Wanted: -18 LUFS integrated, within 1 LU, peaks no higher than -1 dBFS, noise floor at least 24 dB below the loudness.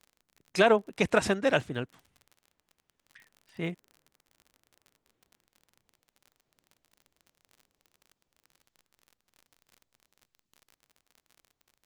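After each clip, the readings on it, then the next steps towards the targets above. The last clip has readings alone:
ticks 40/s; loudness -28.0 LUFS; peak -9.5 dBFS; loudness target -18.0 LUFS
-> de-click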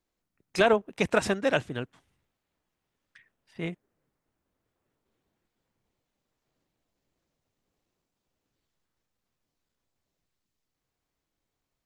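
ticks 0/s; loudness -27.5 LUFS; peak -9.5 dBFS; loudness target -18.0 LUFS
-> gain +9.5 dB; limiter -1 dBFS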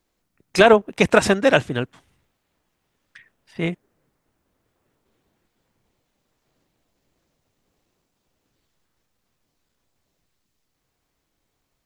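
loudness -18.0 LUFS; peak -1.0 dBFS; noise floor -75 dBFS

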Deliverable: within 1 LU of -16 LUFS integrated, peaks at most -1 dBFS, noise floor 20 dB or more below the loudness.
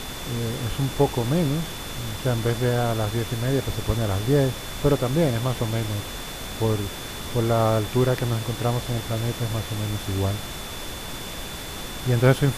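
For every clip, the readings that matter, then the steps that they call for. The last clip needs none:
steady tone 3500 Hz; tone level -40 dBFS; noise floor -34 dBFS; noise floor target -45 dBFS; loudness -25.0 LUFS; peak -6.0 dBFS; loudness target -16.0 LUFS
-> notch 3500 Hz, Q 30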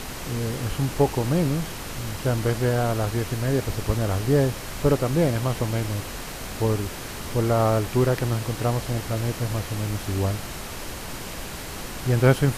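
steady tone none; noise floor -35 dBFS; noise floor target -45 dBFS
-> noise print and reduce 10 dB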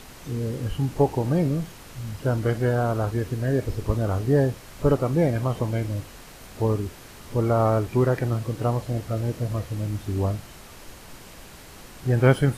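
noise floor -45 dBFS; loudness -25.0 LUFS; peak -6.0 dBFS; loudness target -16.0 LUFS
-> gain +9 dB; limiter -1 dBFS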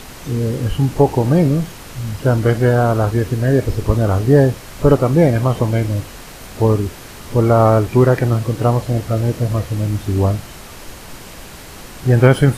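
loudness -16.0 LUFS; peak -1.0 dBFS; noise floor -36 dBFS

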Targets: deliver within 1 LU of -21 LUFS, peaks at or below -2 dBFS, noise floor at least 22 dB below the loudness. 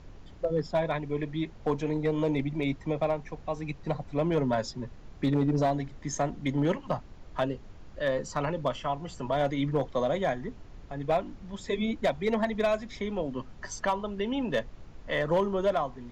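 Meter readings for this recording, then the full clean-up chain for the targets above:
clipped 0.5%; flat tops at -19.0 dBFS; noise floor -49 dBFS; noise floor target -53 dBFS; loudness -30.5 LUFS; peak -19.0 dBFS; loudness target -21.0 LUFS
-> clip repair -19 dBFS; noise print and reduce 6 dB; gain +9.5 dB

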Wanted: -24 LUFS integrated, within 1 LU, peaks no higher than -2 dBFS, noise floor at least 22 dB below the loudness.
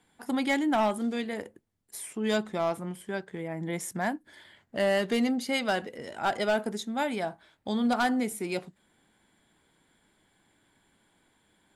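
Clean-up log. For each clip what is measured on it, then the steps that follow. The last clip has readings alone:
clipped 0.6%; flat tops at -19.5 dBFS; loudness -30.0 LUFS; peak -19.5 dBFS; loudness target -24.0 LUFS
-> clip repair -19.5 dBFS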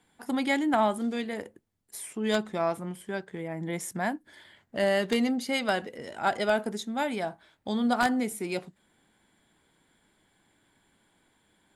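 clipped 0.0%; loudness -29.5 LUFS; peak -10.5 dBFS; loudness target -24.0 LUFS
-> gain +5.5 dB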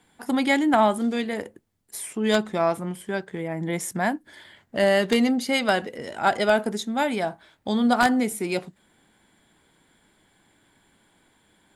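loudness -24.0 LUFS; peak -5.0 dBFS; noise floor -64 dBFS

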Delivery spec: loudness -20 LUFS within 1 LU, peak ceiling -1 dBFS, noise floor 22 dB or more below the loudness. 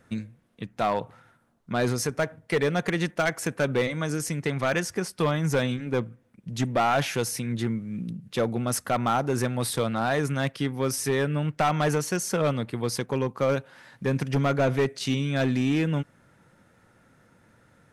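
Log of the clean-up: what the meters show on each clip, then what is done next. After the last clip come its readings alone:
clipped 1.2%; flat tops at -17.5 dBFS; loudness -27.0 LUFS; peak -17.5 dBFS; loudness target -20.0 LUFS
-> clip repair -17.5 dBFS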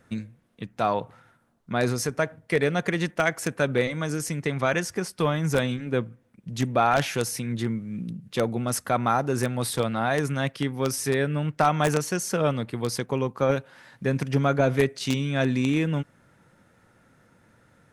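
clipped 0.0%; loudness -26.0 LUFS; peak -8.5 dBFS; loudness target -20.0 LUFS
-> gain +6 dB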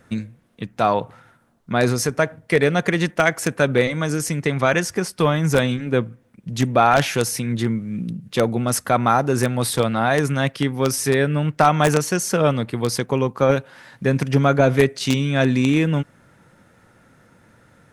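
loudness -20.0 LUFS; peak -2.5 dBFS; noise floor -56 dBFS

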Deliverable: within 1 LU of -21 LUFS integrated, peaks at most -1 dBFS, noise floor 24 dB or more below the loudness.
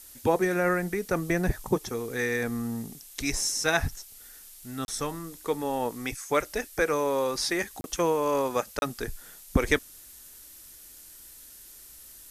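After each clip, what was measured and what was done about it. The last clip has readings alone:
dropouts 3; longest dropout 31 ms; noise floor -49 dBFS; noise floor target -53 dBFS; loudness -28.5 LUFS; peak -9.0 dBFS; loudness target -21.0 LUFS
-> interpolate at 4.85/7.81/8.79, 31 ms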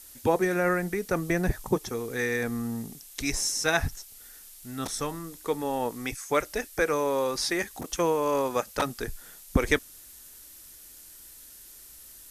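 dropouts 0; noise floor -49 dBFS; noise floor target -53 dBFS
-> noise print and reduce 6 dB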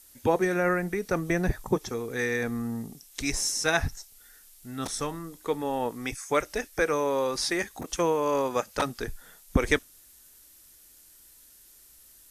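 noise floor -55 dBFS; loudness -28.5 LUFS; peak -9.0 dBFS; loudness target -21.0 LUFS
-> gain +7.5 dB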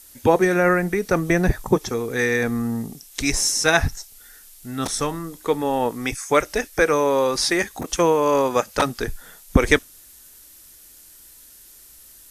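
loudness -21.0 LUFS; peak -1.5 dBFS; noise floor -48 dBFS

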